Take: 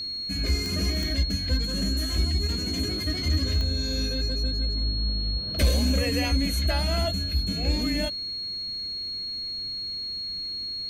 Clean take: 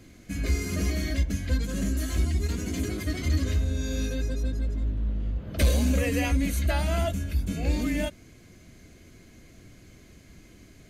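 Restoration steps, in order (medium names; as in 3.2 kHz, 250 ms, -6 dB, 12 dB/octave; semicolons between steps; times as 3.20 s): de-click; band-stop 4.3 kHz, Q 30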